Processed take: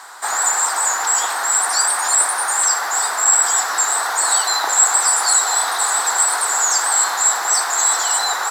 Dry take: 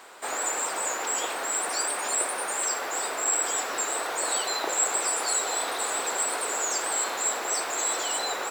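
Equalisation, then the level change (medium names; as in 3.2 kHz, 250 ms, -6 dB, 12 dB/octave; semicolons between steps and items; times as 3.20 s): high-order bell 1.2 kHz +15 dB; high-order bell 7.1 kHz +15.5 dB 2.3 oct; -3.5 dB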